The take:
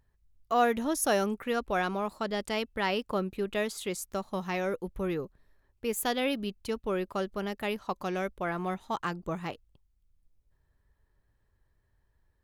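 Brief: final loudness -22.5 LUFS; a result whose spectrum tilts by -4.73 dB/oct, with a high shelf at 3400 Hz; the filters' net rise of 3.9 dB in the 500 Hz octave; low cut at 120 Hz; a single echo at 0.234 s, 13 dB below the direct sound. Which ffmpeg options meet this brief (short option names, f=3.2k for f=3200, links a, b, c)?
-af "highpass=120,equalizer=f=500:t=o:g=5,highshelf=f=3.4k:g=-3,aecho=1:1:234:0.224,volume=7dB"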